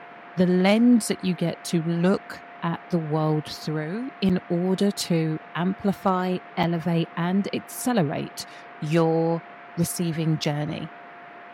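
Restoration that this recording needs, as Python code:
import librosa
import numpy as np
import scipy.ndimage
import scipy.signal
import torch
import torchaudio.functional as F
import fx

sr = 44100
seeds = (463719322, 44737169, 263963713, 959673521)

y = fx.fix_declip(x, sr, threshold_db=-10.5)
y = fx.notch(y, sr, hz=700.0, q=30.0)
y = fx.fix_interpolate(y, sr, at_s=(4.29, 6.63, 10.44), length_ms=6.0)
y = fx.noise_reduce(y, sr, print_start_s=11.02, print_end_s=11.52, reduce_db=25.0)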